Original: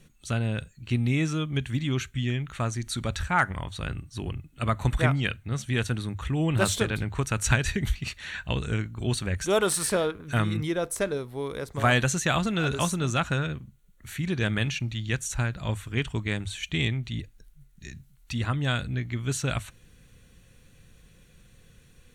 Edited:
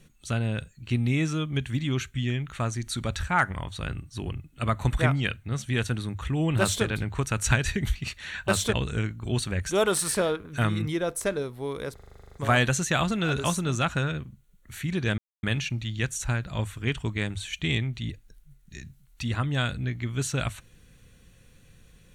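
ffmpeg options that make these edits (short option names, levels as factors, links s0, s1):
-filter_complex "[0:a]asplit=14[s0][s1][s2][s3][s4][s5][s6][s7][s8][s9][s10][s11][s12][s13];[s0]atrim=end=8.482[s14];[s1]atrim=start=6.598:end=6.852[s15];[s2]atrim=start=8.478:end=11.732[s16];[s3]atrim=start=11.688:end=11.732[s17];[s4]atrim=start=11.688:end=11.732[s18];[s5]atrim=start=11.688:end=11.732[s19];[s6]atrim=start=11.688:end=11.732[s20];[s7]atrim=start=11.688:end=11.732[s21];[s8]atrim=start=11.688:end=11.732[s22];[s9]atrim=start=11.688:end=11.732[s23];[s10]atrim=start=11.688:end=11.732[s24];[s11]atrim=start=11.688:end=11.732[s25];[s12]atrim=start=11.688:end=14.53,asetpts=PTS-STARTPTS,afade=t=out:st=2.838:d=0.004:c=hsin,apad=pad_dur=0.25[s26];[s13]atrim=start=14.53,asetpts=PTS-STARTPTS,afade=t=in:d=0.004:c=hsin[s27];[s14][s15]acrossfade=d=0.004:c1=hsin:c2=hsin[s28];[s28][s16]acrossfade=d=0.004:c1=hsin:c2=hsin[s29];[s29][s17]acrossfade=d=0.004:c1=hsin:c2=hsin[s30];[s30][s18]acrossfade=d=0.004:c1=hsin:c2=hsin[s31];[s31][s19]acrossfade=d=0.004:c1=hsin:c2=hsin[s32];[s32][s20]acrossfade=d=0.004:c1=hsin:c2=hsin[s33];[s33][s21]acrossfade=d=0.004:c1=hsin:c2=hsin[s34];[s34][s22]acrossfade=d=0.004:c1=hsin:c2=hsin[s35];[s35][s23]acrossfade=d=0.004:c1=hsin:c2=hsin[s36];[s36][s24]acrossfade=d=0.004:c1=hsin:c2=hsin[s37];[s37][s25]acrossfade=d=0.004:c1=hsin:c2=hsin[s38];[s26][s27]concat=n=2:v=0:a=1[s39];[s38][s39]acrossfade=d=0.004:c1=hsin:c2=hsin"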